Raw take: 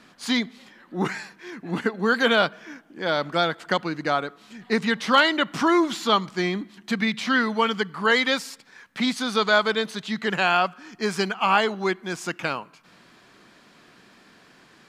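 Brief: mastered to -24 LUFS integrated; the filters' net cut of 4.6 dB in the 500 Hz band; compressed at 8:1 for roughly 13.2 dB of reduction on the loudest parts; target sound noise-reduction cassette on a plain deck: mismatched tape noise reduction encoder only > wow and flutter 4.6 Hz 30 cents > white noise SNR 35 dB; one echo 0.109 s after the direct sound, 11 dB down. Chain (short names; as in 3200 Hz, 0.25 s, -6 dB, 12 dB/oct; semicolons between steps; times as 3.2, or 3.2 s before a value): bell 500 Hz -6 dB; compressor 8:1, threshold -27 dBFS; echo 0.109 s -11 dB; mismatched tape noise reduction encoder only; wow and flutter 4.6 Hz 30 cents; white noise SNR 35 dB; gain +8 dB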